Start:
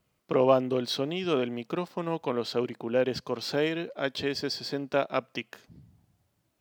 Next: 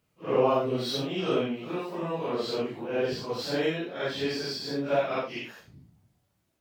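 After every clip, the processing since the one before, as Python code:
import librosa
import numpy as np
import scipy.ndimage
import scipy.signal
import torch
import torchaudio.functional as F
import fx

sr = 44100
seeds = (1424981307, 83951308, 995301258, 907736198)

y = fx.phase_scramble(x, sr, seeds[0], window_ms=200)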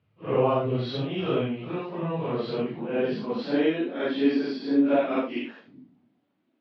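y = scipy.signal.sosfilt(scipy.signal.butter(4, 3600.0, 'lowpass', fs=sr, output='sos'), x)
y = fx.filter_sweep_highpass(y, sr, from_hz=99.0, to_hz=260.0, start_s=1.58, end_s=3.8, q=4.9)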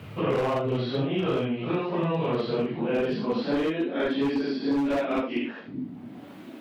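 y = np.clip(x, -10.0 ** (-20.5 / 20.0), 10.0 ** (-20.5 / 20.0))
y = fx.band_squash(y, sr, depth_pct=100)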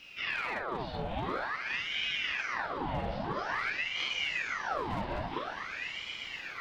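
y = fx.echo_swell(x, sr, ms=122, loudest=8, wet_db=-14.0)
y = fx.ring_lfo(y, sr, carrier_hz=1500.0, swing_pct=80, hz=0.49)
y = y * librosa.db_to_amplitude(-7.0)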